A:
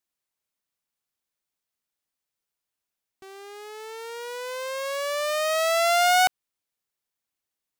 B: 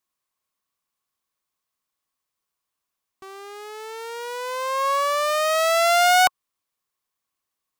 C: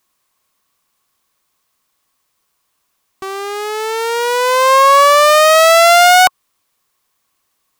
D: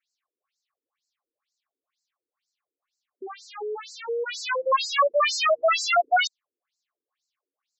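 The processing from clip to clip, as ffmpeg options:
-af "equalizer=f=1.1k:t=o:w=0.21:g=13,volume=2.5dB"
-af "alimiter=level_in=17.5dB:limit=-1dB:release=50:level=0:latency=1,volume=-1.5dB"
-af "bandreject=f=950:w=7.1,aeval=exprs='0.841*(cos(1*acos(clip(val(0)/0.841,-1,1)))-cos(1*PI/2))+0.119*(cos(2*acos(clip(val(0)/0.841,-1,1)))-cos(2*PI/2))+0.0237*(cos(7*acos(clip(val(0)/0.841,-1,1)))-cos(7*PI/2))+0.133*(cos(8*acos(clip(val(0)/0.841,-1,1)))-cos(8*PI/2))':c=same,afftfilt=real='re*between(b*sr/1024,340*pow(5800/340,0.5+0.5*sin(2*PI*2.1*pts/sr))/1.41,340*pow(5800/340,0.5+0.5*sin(2*PI*2.1*pts/sr))*1.41)':imag='im*between(b*sr/1024,340*pow(5800/340,0.5+0.5*sin(2*PI*2.1*pts/sr))/1.41,340*pow(5800/340,0.5+0.5*sin(2*PI*2.1*pts/sr))*1.41)':win_size=1024:overlap=0.75,volume=-6dB"

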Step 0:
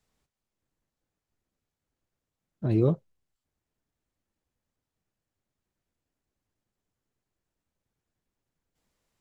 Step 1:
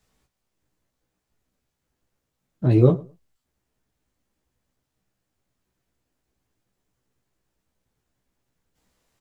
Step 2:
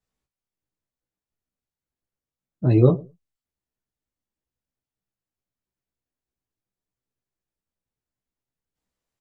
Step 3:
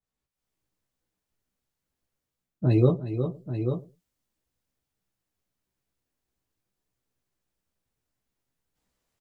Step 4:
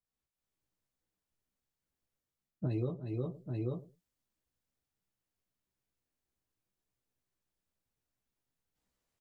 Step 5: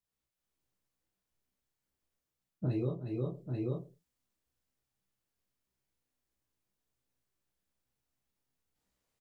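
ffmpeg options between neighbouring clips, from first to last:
-filter_complex "[0:a]asplit=2[a][b];[b]adelay=16,volume=-4dB[c];[a][c]amix=inputs=2:normalize=0,asplit=2[d][e];[e]adelay=107,lowpass=f=1.6k:p=1,volume=-21dB,asplit=2[f][g];[g]adelay=107,lowpass=f=1.6k:p=1,volume=0.19[h];[d][f][h]amix=inputs=3:normalize=0,volume=6dB"
-af "afftdn=nr=15:nf=-40,adynamicequalizer=threshold=0.0178:dfrequency=1900:dqfactor=0.7:tfrequency=1900:tqfactor=0.7:attack=5:release=100:ratio=0.375:range=2.5:mode=boostabove:tftype=highshelf"
-af "aecho=1:1:359|837:0.266|0.126,dynaudnorm=f=140:g=5:m=12dB,adynamicequalizer=threshold=0.00891:dfrequency=2800:dqfactor=0.7:tfrequency=2800:tqfactor=0.7:attack=5:release=100:ratio=0.375:range=3.5:mode=boostabove:tftype=highshelf,volume=-6dB"
-af "acompressor=threshold=-25dB:ratio=6,volume=-6dB"
-filter_complex "[0:a]asplit=2[a][b];[b]adelay=31,volume=-4dB[c];[a][c]amix=inputs=2:normalize=0"

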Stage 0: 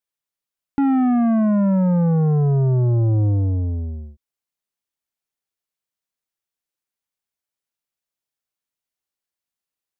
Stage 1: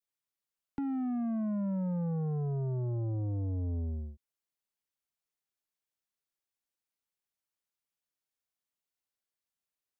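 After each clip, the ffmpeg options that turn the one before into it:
-filter_complex "[0:a]adynamicequalizer=threshold=0.00794:dfrequency=1600:dqfactor=1.3:tfrequency=1600:tqfactor=1.3:attack=5:release=100:ratio=0.375:range=2:mode=cutabove:tftype=bell,alimiter=limit=-22.5dB:level=0:latency=1,acrossover=split=240|730[a][b][c];[a]acompressor=threshold=-28dB:ratio=4[d];[b]acompressor=threshold=-36dB:ratio=4[e];[c]acompressor=threshold=-47dB:ratio=4[f];[d][e][f]amix=inputs=3:normalize=0,volume=-5dB"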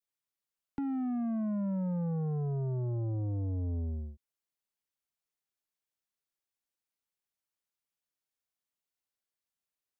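-af anull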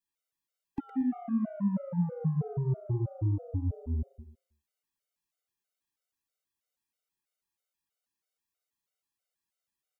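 -filter_complex "[0:a]asplit=2[a][b];[b]aecho=0:1:114|228|342|456:0.562|0.174|0.054|0.0168[c];[a][c]amix=inputs=2:normalize=0,afftfilt=real='re*gt(sin(2*PI*3.1*pts/sr)*(1-2*mod(floor(b*sr/1024/390),2)),0)':imag='im*gt(sin(2*PI*3.1*pts/sr)*(1-2*mod(floor(b*sr/1024/390),2)),0)':win_size=1024:overlap=0.75,volume=3.5dB"

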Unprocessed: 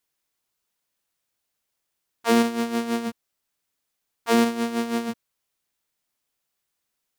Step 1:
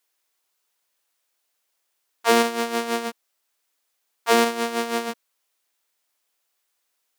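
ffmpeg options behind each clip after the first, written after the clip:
-af "highpass=410,volume=5dB"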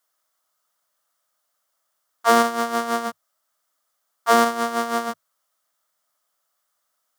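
-af "equalizer=f=100:t=o:w=0.33:g=7,equalizer=f=160:t=o:w=0.33:g=9,equalizer=f=400:t=o:w=0.33:g=-9,equalizer=f=630:t=o:w=0.33:g=8,equalizer=f=1.25k:t=o:w=0.33:g=11,equalizer=f=2.5k:t=o:w=0.33:g=-10,equalizer=f=4k:t=o:w=0.33:g=-3"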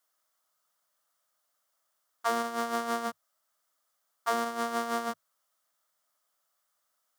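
-af "acompressor=threshold=-23dB:ratio=5,volume=-3.5dB"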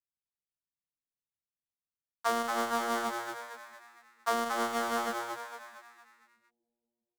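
-filter_complex "[0:a]acrossover=split=150[a][b];[a]aecho=1:1:641|1282|1923:0.178|0.0569|0.0182[c];[b]aeval=exprs='sgn(val(0))*max(abs(val(0))-0.00501,0)':c=same[d];[c][d]amix=inputs=2:normalize=0,asplit=7[e][f][g][h][i][j][k];[f]adelay=229,afreqshift=120,volume=-5dB[l];[g]adelay=458,afreqshift=240,volume=-11.4dB[m];[h]adelay=687,afreqshift=360,volume=-17.8dB[n];[i]adelay=916,afreqshift=480,volume=-24.1dB[o];[j]adelay=1145,afreqshift=600,volume=-30.5dB[p];[k]adelay=1374,afreqshift=720,volume=-36.9dB[q];[e][l][m][n][o][p][q]amix=inputs=7:normalize=0"

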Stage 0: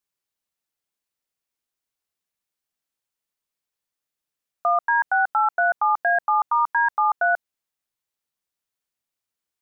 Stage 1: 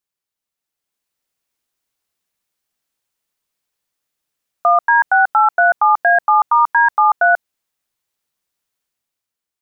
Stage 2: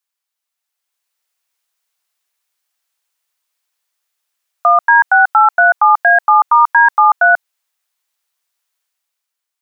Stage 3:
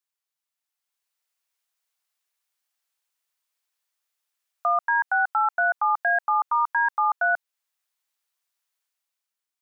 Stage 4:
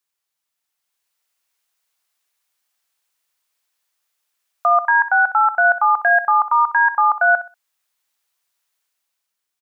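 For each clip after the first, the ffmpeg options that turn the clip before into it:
-af "dynaudnorm=f=200:g=9:m=8dB"
-af "highpass=750,volume=4.5dB"
-af "alimiter=limit=-7.5dB:level=0:latency=1:release=447,volume=-7.5dB"
-af "aecho=1:1:63|126|189:0.211|0.0528|0.0132,volume=7dB"

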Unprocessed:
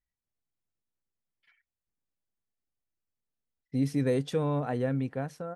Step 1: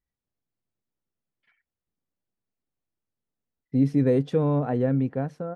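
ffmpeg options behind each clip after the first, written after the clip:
-af "lowpass=f=2.6k:p=1,equalizer=f=240:w=0.33:g=7"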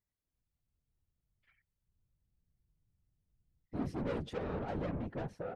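-af "asubboost=boost=10:cutoff=58,asoftclip=type=tanh:threshold=-30dB,afftfilt=real='hypot(re,im)*cos(2*PI*random(0))':imag='hypot(re,im)*sin(2*PI*random(1))':win_size=512:overlap=0.75,volume=1dB"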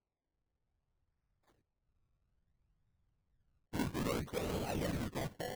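-af "acrusher=samples=24:mix=1:aa=0.000001:lfo=1:lforange=24:lforate=0.6"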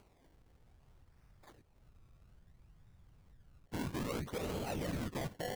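-af "acompressor=mode=upward:threshold=-51dB:ratio=2.5,alimiter=level_in=10dB:limit=-24dB:level=0:latency=1:release=67,volume=-10dB,volume=3dB"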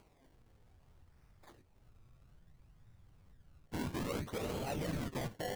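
-af "flanger=delay=6.1:depth=7.4:regen=67:speed=0.41:shape=triangular,volume=4.5dB"

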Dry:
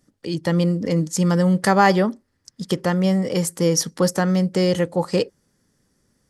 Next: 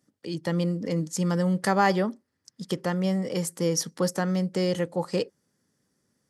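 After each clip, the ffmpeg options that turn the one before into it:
-af "highpass=110,volume=-6.5dB"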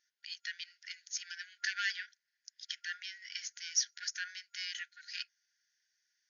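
-af "asoftclip=type=tanh:threshold=-18.5dB,afftfilt=real='re*between(b*sr/4096,1400,6800)':imag='im*between(b*sr/4096,1400,6800)':win_size=4096:overlap=0.75"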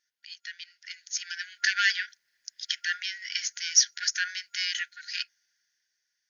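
-af "dynaudnorm=f=210:g=11:m=11dB"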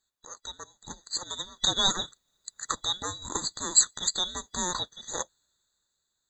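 -af "afftfilt=real='real(if(lt(b,920),b+92*(1-2*mod(floor(b/92),2)),b),0)':imag='imag(if(lt(b,920),b+92*(1-2*mod(floor(b/92),2)),b),0)':win_size=2048:overlap=0.75"

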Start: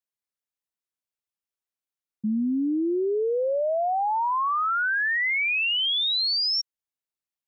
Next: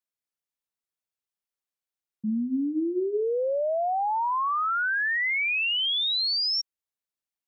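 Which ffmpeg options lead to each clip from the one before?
-af "bandreject=f=50:t=h:w=6,bandreject=f=100:t=h:w=6,bandreject=f=150:t=h:w=6,bandreject=f=200:t=h:w=6,bandreject=f=250:t=h:w=6,bandreject=f=300:t=h:w=6,bandreject=f=350:t=h:w=6,bandreject=f=400:t=h:w=6,volume=-1.5dB"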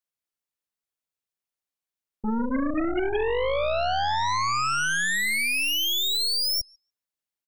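-filter_complex "[0:a]asplit=2[a][b];[b]adelay=146,lowpass=f=870:p=1,volume=-13dB,asplit=2[c][d];[d]adelay=146,lowpass=f=870:p=1,volume=0.37,asplit=2[e][f];[f]adelay=146,lowpass=f=870:p=1,volume=0.37,asplit=2[g][h];[h]adelay=146,lowpass=f=870:p=1,volume=0.37[i];[a][c][e][g][i]amix=inputs=5:normalize=0,aeval=exprs='0.112*(cos(1*acos(clip(val(0)/0.112,-1,1)))-cos(1*PI/2))+0.0501*(cos(2*acos(clip(val(0)/0.112,-1,1)))-cos(2*PI/2))+0.0141*(cos(4*acos(clip(val(0)/0.112,-1,1)))-cos(4*PI/2))+0.00501*(cos(6*acos(clip(val(0)/0.112,-1,1)))-cos(6*PI/2))+0.0282*(cos(8*acos(clip(val(0)/0.112,-1,1)))-cos(8*PI/2))':c=same"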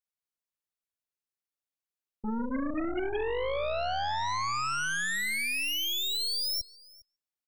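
-af "aecho=1:1:406:0.0668,volume=-6dB"

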